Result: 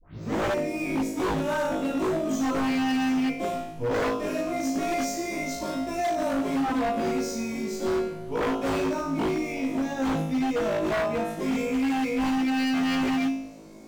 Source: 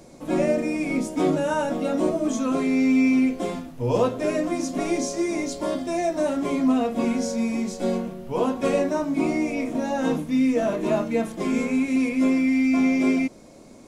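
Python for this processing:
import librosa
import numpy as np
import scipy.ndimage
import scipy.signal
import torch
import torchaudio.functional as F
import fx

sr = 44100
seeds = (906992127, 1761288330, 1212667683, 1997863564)

y = fx.tape_start_head(x, sr, length_s=0.38)
y = fx.room_flutter(y, sr, wall_m=3.2, rt60_s=0.68)
y = 10.0 ** (-15.5 / 20.0) * (np.abs((y / 10.0 ** (-15.5 / 20.0) + 3.0) % 4.0 - 2.0) - 1.0)
y = np.interp(np.arange(len(y)), np.arange(len(y))[::2], y[::2])
y = F.gain(torch.from_numpy(y), -5.0).numpy()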